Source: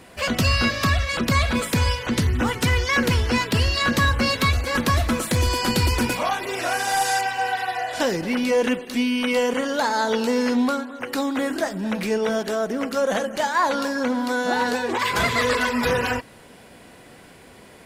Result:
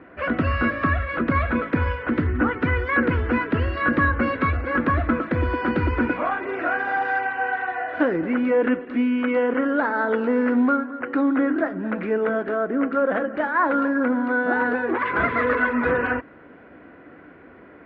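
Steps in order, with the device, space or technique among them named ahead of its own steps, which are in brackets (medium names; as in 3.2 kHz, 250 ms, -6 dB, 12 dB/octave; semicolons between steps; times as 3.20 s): bass cabinet (cabinet simulation 62–2000 Hz, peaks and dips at 120 Hz -9 dB, 200 Hz -4 dB, 300 Hz +9 dB, 870 Hz -5 dB, 1.4 kHz +6 dB)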